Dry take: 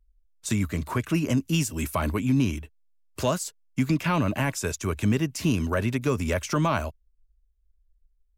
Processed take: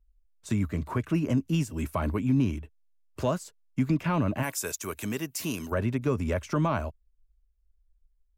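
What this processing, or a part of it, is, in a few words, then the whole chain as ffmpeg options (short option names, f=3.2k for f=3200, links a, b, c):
through cloth: -filter_complex "[0:a]highshelf=f=2.2k:g=-11,asplit=3[a][b][c];[a]afade=t=out:st=4.42:d=0.02[d];[b]aemphasis=mode=production:type=riaa,afade=t=in:st=4.42:d=0.02,afade=t=out:st=5.71:d=0.02[e];[c]afade=t=in:st=5.71:d=0.02[f];[d][e][f]amix=inputs=3:normalize=0,volume=-1.5dB"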